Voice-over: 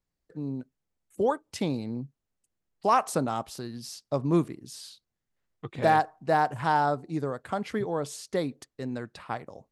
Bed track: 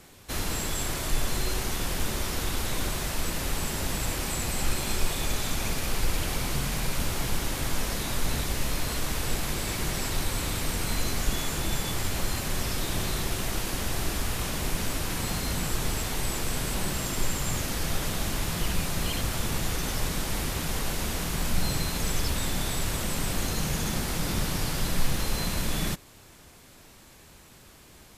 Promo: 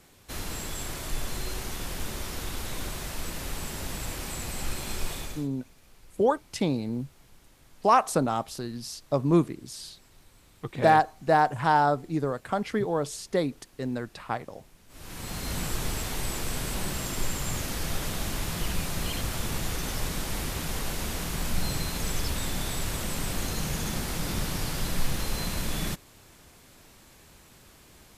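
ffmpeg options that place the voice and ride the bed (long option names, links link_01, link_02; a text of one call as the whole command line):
ffmpeg -i stem1.wav -i stem2.wav -filter_complex "[0:a]adelay=5000,volume=2.5dB[link_01];[1:a]volume=21dB,afade=type=out:start_time=5.14:duration=0.34:silence=0.0707946,afade=type=in:start_time=14.88:duration=0.7:silence=0.0501187[link_02];[link_01][link_02]amix=inputs=2:normalize=0" out.wav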